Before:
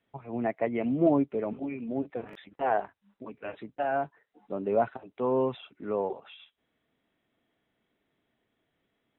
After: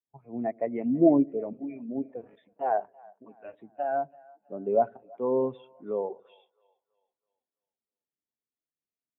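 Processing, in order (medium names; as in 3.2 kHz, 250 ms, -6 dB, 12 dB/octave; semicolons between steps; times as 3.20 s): two-band feedback delay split 540 Hz, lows 90 ms, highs 328 ms, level -16 dB; spectral contrast expander 1.5:1; trim +3.5 dB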